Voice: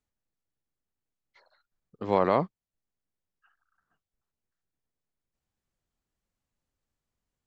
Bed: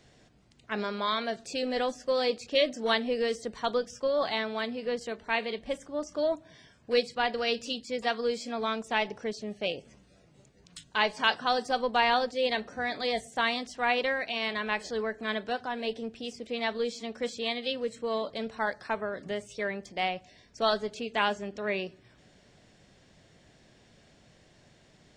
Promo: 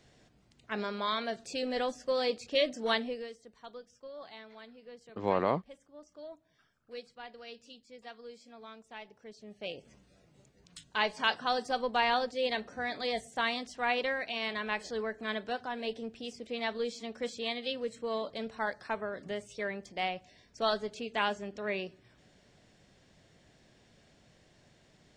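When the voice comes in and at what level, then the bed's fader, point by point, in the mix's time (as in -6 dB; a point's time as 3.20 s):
3.15 s, -5.0 dB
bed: 3.01 s -3 dB
3.36 s -18.5 dB
9.15 s -18.5 dB
9.92 s -3.5 dB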